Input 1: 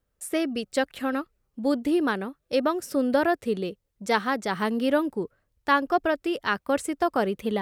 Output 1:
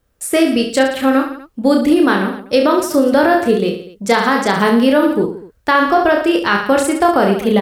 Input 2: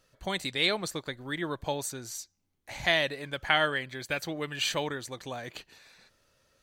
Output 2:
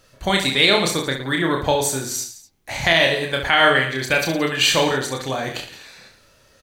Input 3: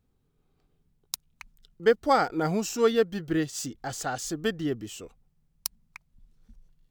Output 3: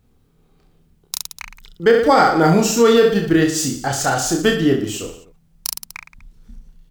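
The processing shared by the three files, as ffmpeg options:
-filter_complex "[0:a]asplit=2[s0][s1];[s1]aecho=0:1:30|67.5|114.4|173|246.2:0.631|0.398|0.251|0.158|0.1[s2];[s0][s2]amix=inputs=2:normalize=0,alimiter=level_in=4.73:limit=0.891:release=50:level=0:latency=1,volume=0.794"

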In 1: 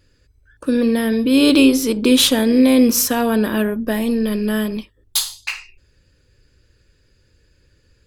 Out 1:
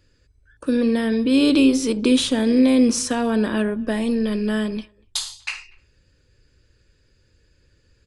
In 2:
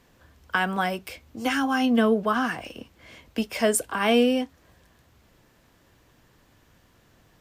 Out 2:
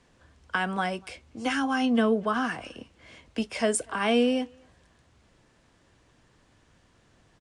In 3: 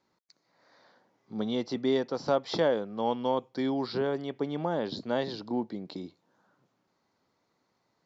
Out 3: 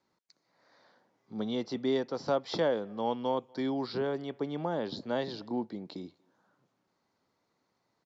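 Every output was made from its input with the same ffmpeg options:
-filter_complex "[0:a]asplit=2[s0][s1];[s1]adelay=240,highpass=300,lowpass=3400,asoftclip=type=hard:threshold=0.299,volume=0.0398[s2];[s0][s2]amix=inputs=2:normalize=0,aresample=22050,aresample=44100,acrossover=split=380[s3][s4];[s4]acompressor=threshold=0.112:ratio=4[s5];[s3][s5]amix=inputs=2:normalize=0,volume=0.75"

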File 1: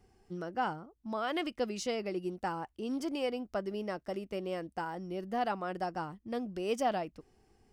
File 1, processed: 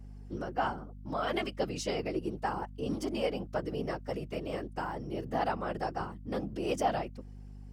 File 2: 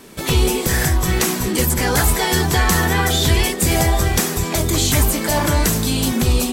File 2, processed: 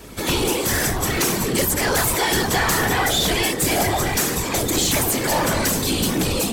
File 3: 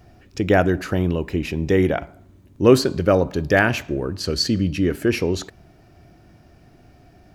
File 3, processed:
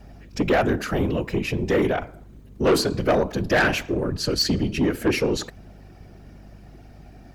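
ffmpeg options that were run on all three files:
-filter_complex "[0:a]acrossover=split=220|3900[s0][s1][s2];[s0]acompressor=threshold=0.0501:ratio=6[s3];[s3][s1][s2]amix=inputs=3:normalize=0,afftfilt=real='hypot(re,im)*cos(2*PI*random(0))':imag='hypot(re,im)*sin(2*PI*random(1))':win_size=512:overlap=0.75,asoftclip=type=tanh:threshold=0.0891,aeval=exprs='val(0)+0.00224*(sin(2*PI*50*n/s)+sin(2*PI*2*50*n/s)/2+sin(2*PI*3*50*n/s)/3+sin(2*PI*4*50*n/s)/4+sin(2*PI*5*50*n/s)/5)':c=same,volume=2.37"

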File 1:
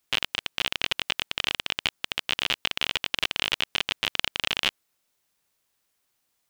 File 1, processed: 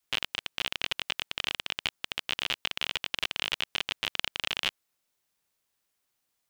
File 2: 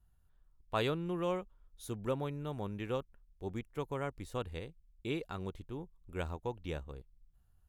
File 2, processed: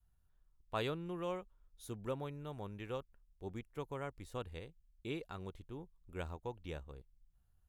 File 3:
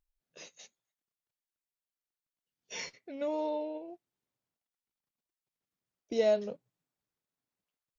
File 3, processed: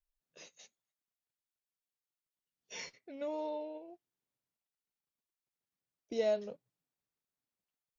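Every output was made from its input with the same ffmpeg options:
-af "adynamicequalizer=threshold=0.00398:dfrequency=230:dqfactor=0.93:tfrequency=230:tqfactor=0.93:attack=5:release=100:ratio=0.375:range=2:mode=cutabove:tftype=bell,volume=0.596"

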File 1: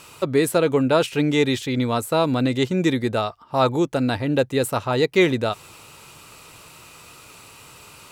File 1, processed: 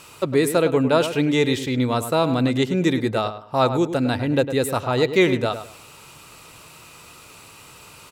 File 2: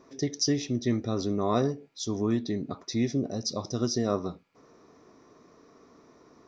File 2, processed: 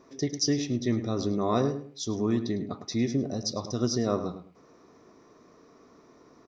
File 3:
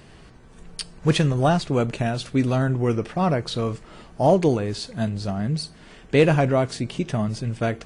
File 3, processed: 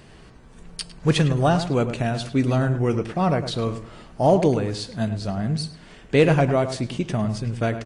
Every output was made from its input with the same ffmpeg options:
-filter_complex "[0:a]asplit=2[s0][s1];[s1]adelay=104,lowpass=f=2300:p=1,volume=0.316,asplit=2[s2][s3];[s3]adelay=104,lowpass=f=2300:p=1,volume=0.25,asplit=2[s4][s5];[s5]adelay=104,lowpass=f=2300:p=1,volume=0.25[s6];[s0][s2][s4][s6]amix=inputs=4:normalize=0"

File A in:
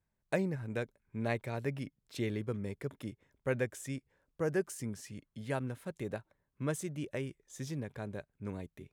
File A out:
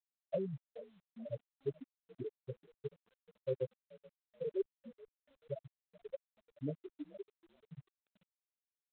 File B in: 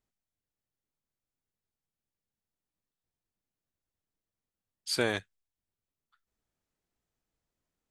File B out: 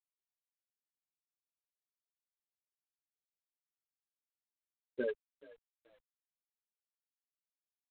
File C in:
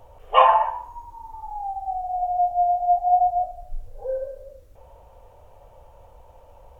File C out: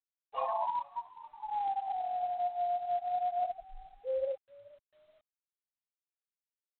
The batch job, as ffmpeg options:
-filter_complex "[0:a]afftfilt=real='re*gte(hypot(re,im),0.158)':imag='im*gte(hypot(re,im),0.158)':win_size=1024:overlap=0.75,highpass=f=310:p=1,highshelf=f=2400:g=-6.5,aecho=1:1:7.3:0.88,areverse,acompressor=threshold=0.0316:ratio=20,areverse,asplit=3[s0][s1][s2];[s1]adelay=430,afreqshift=42,volume=0.0794[s3];[s2]adelay=860,afreqshift=84,volume=0.0254[s4];[s0][s3][s4]amix=inputs=3:normalize=0" -ar 8000 -c:a adpcm_g726 -b:a 24k

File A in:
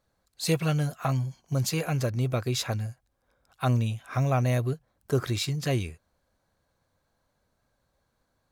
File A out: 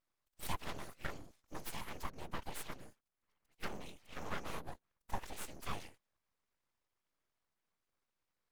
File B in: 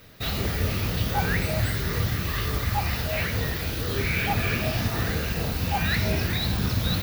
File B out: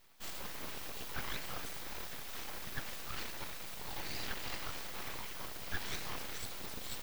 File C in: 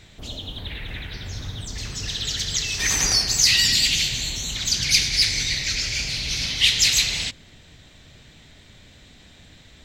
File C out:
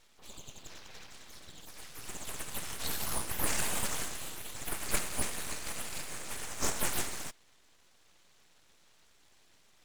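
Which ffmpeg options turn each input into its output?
-af "afftfilt=real='hypot(re,im)*cos(2*PI*random(0))':imag='hypot(re,im)*sin(2*PI*random(1))':win_size=512:overlap=0.75,lowshelf=f=290:t=q:w=1.5:g=-10,aeval=exprs='abs(val(0))':c=same,volume=0.562"

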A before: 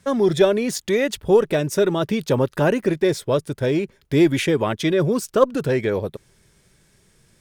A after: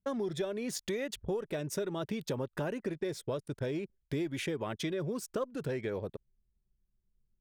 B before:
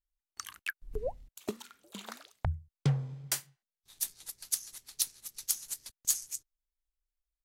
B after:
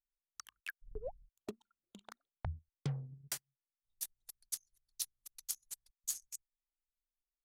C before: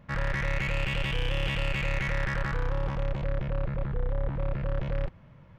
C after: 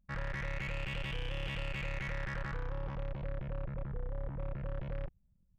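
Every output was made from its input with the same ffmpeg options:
-af "anlmdn=0.631,acompressor=threshold=0.0631:ratio=6,volume=0.398"

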